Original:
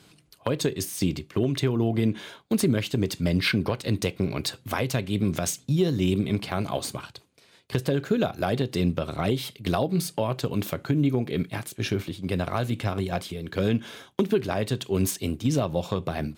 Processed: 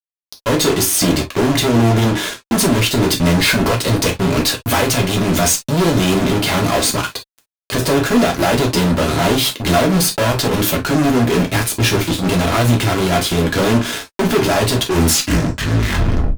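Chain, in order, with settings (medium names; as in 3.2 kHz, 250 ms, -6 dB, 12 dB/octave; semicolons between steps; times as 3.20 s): tape stop on the ending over 1.53 s; fuzz box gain 40 dB, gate -41 dBFS; gated-style reverb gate 80 ms falling, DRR 1 dB; trim -1.5 dB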